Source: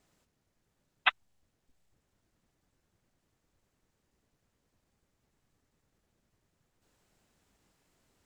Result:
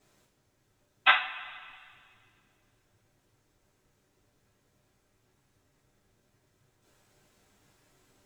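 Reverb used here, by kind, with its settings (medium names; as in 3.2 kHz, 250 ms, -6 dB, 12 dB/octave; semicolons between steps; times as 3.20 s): two-slope reverb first 0.34 s, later 2.1 s, from -18 dB, DRR -7.5 dB; trim -1 dB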